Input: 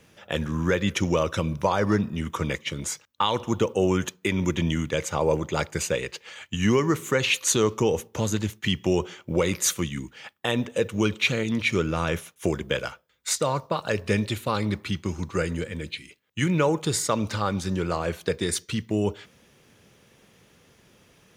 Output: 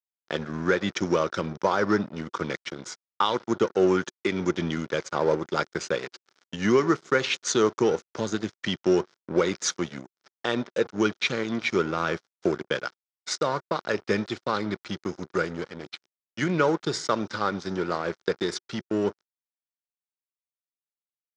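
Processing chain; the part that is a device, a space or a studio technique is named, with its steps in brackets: blown loudspeaker (crossover distortion -35 dBFS; cabinet simulation 170–5900 Hz, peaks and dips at 370 Hz +5 dB, 1.4 kHz +7 dB, 2.7 kHz -6 dB, 5.3 kHz +5 dB)

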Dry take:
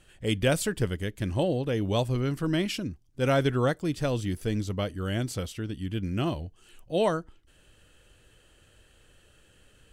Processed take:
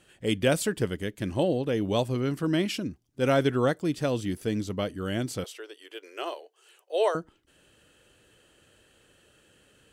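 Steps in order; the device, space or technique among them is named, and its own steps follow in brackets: 5.44–7.15 s: elliptic high-pass 410 Hz, stop band 50 dB; filter by subtraction (in parallel: low-pass 260 Hz 12 dB/octave + polarity flip)

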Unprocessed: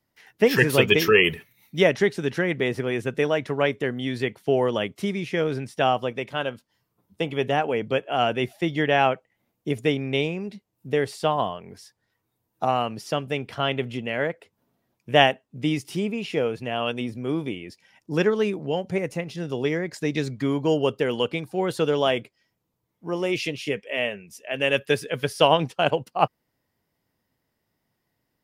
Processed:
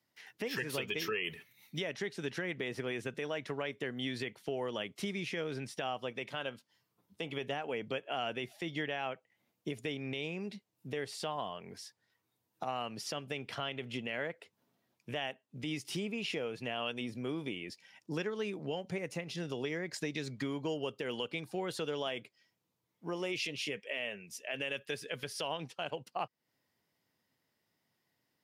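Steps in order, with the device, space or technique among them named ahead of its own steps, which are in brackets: broadcast voice chain (high-pass 110 Hz; de-esser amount 40%; compression 4:1, threshold -29 dBFS, peak gain reduction 15.5 dB; peaking EQ 4 kHz +6 dB 2.8 oct; peak limiter -19 dBFS, peak gain reduction 7 dB); trim -6 dB

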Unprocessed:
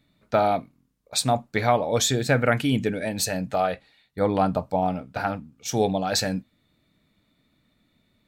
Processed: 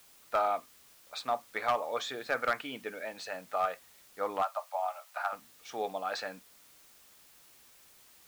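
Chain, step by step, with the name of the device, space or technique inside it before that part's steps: drive-through speaker (band-pass 550–3100 Hz; peaking EQ 1.2 kHz +10 dB 0.37 oct; hard clipper -13 dBFS, distortion -17 dB; white noise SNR 23 dB); 4.42–5.33 s: steep high-pass 570 Hz 72 dB/octave; trim -8 dB

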